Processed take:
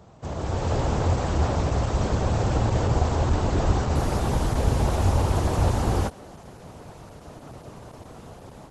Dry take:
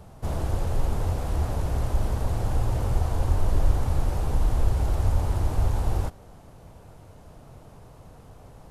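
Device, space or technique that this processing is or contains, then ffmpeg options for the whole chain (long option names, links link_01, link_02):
video call: -filter_complex "[0:a]highpass=frequency=45:poles=1,asplit=3[link_01][link_02][link_03];[link_01]afade=type=out:start_time=3.31:duration=0.02[link_04];[link_02]adynamicequalizer=threshold=0.0112:dfrequency=100:dqfactor=5.5:tfrequency=100:tqfactor=5.5:attack=5:release=100:ratio=0.375:range=1.5:mode=cutabove:tftype=bell,afade=type=in:start_time=3.31:duration=0.02,afade=type=out:start_time=4.2:duration=0.02[link_05];[link_03]afade=type=in:start_time=4.2:duration=0.02[link_06];[link_04][link_05][link_06]amix=inputs=3:normalize=0,highpass=frequency=100:poles=1,dynaudnorm=framelen=360:gausssize=3:maxgain=9dB" -ar 48000 -c:a libopus -b:a 12k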